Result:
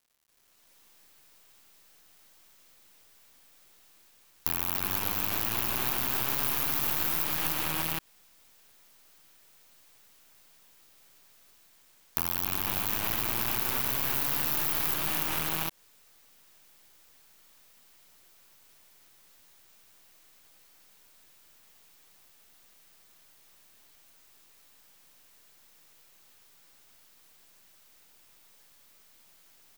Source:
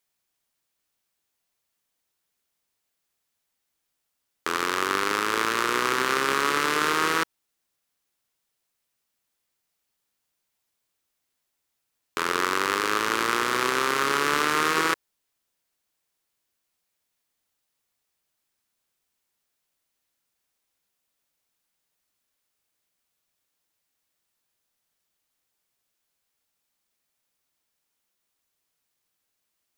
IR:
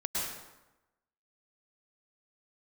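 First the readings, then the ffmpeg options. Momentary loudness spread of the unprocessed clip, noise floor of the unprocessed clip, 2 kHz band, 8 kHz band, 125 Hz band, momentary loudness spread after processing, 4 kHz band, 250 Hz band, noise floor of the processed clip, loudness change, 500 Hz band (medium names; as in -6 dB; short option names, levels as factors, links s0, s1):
5 LU, -79 dBFS, -12.0 dB, -2.5 dB, +3.5 dB, 4 LU, -6.5 dB, -8.0 dB, -61 dBFS, -3.5 dB, -13.5 dB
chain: -filter_complex "[0:a]aecho=1:1:107|292|479|589|692|755:0.168|0.668|0.447|0.251|0.316|0.447,dynaudnorm=f=260:g=5:m=2,aeval=exprs='0.891*(cos(1*acos(clip(val(0)/0.891,-1,1)))-cos(1*PI/2))+0.447*(cos(8*acos(clip(val(0)/0.891,-1,1)))-cos(8*PI/2))':c=same,asplit=2[s0][s1];[s1]aeval=exprs='(mod(1.19*val(0)+1,2)-1)/1.19':c=same,volume=0.596[s2];[s0][s2]amix=inputs=2:normalize=0,alimiter=limit=0.562:level=0:latency=1:release=29,aexciter=amount=12.5:drive=1.5:freq=11000,acompressor=threshold=0.178:ratio=4,acrusher=bits=5:dc=4:mix=0:aa=0.000001,volume=0.316"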